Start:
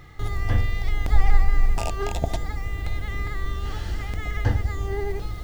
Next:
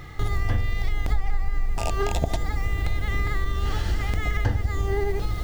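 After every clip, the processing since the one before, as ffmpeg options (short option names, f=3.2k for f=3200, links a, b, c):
-af "acompressor=threshold=-25dB:ratio=6,volume=6dB"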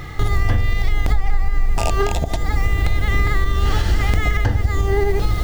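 -af "alimiter=limit=-15.5dB:level=0:latency=1:release=232,volume=8.5dB"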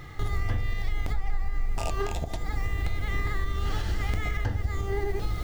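-af "flanger=delay=5.8:depth=8.1:regen=-72:speed=1.6:shape=triangular,volume=-6.5dB"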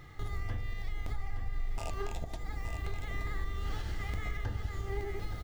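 -af "aecho=1:1:872:0.398,volume=-8.5dB"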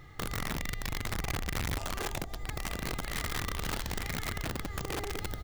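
-af "aeval=exprs='(mod(28.2*val(0)+1,2)-1)/28.2':c=same"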